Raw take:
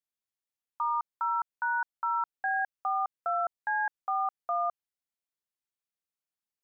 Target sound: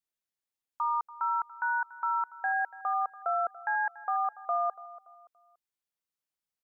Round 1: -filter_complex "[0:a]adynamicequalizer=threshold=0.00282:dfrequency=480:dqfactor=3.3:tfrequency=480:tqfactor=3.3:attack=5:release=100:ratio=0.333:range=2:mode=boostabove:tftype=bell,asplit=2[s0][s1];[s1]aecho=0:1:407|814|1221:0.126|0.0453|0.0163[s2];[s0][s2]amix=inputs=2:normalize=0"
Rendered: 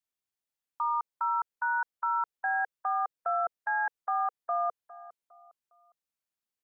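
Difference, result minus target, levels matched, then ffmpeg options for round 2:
echo 121 ms late
-filter_complex "[0:a]adynamicequalizer=threshold=0.00282:dfrequency=480:dqfactor=3.3:tfrequency=480:tqfactor=3.3:attack=5:release=100:ratio=0.333:range=2:mode=boostabove:tftype=bell,asplit=2[s0][s1];[s1]aecho=0:1:286|572|858:0.126|0.0453|0.0163[s2];[s0][s2]amix=inputs=2:normalize=0"

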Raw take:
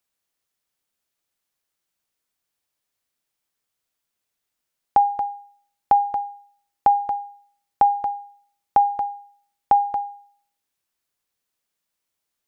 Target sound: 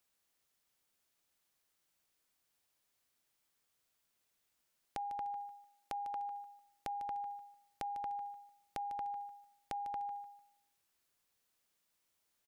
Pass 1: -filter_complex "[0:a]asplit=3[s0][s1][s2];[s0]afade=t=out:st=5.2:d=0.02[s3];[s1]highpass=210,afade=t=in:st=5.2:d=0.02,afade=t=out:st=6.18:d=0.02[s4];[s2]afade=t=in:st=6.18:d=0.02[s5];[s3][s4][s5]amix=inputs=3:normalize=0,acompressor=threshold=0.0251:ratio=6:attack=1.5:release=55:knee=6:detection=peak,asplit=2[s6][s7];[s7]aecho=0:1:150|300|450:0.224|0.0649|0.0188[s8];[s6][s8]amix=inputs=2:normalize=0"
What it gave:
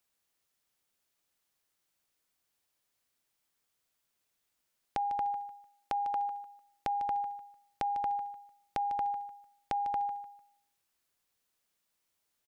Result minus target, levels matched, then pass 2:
compression: peak gain reduction -8.5 dB
-filter_complex "[0:a]asplit=3[s0][s1][s2];[s0]afade=t=out:st=5.2:d=0.02[s3];[s1]highpass=210,afade=t=in:st=5.2:d=0.02,afade=t=out:st=6.18:d=0.02[s4];[s2]afade=t=in:st=6.18:d=0.02[s5];[s3][s4][s5]amix=inputs=3:normalize=0,acompressor=threshold=0.00794:ratio=6:attack=1.5:release=55:knee=6:detection=peak,asplit=2[s6][s7];[s7]aecho=0:1:150|300|450:0.224|0.0649|0.0188[s8];[s6][s8]amix=inputs=2:normalize=0"

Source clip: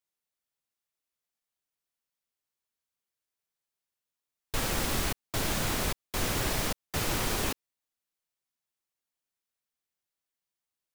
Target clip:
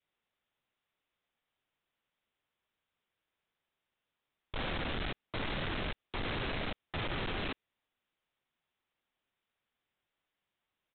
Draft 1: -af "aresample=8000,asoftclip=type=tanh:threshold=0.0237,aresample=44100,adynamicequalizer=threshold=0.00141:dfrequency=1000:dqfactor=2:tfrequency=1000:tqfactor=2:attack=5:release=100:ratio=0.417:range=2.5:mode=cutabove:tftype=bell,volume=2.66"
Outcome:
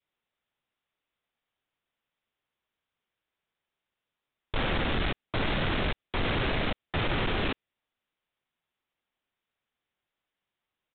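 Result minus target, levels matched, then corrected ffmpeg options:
saturation: distortion -5 dB
-af "aresample=8000,asoftclip=type=tanh:threshold=0.00708,aresample=44100,adynamicequalizer=threshold=0.00141:dfrequency=1000:dqfactor=2:tfrequency=1000:tqfactor=2:attack=5:release=100:ratio=0.417:range=2.5:mode=cutabove:tftype=bell,volume=2.66"

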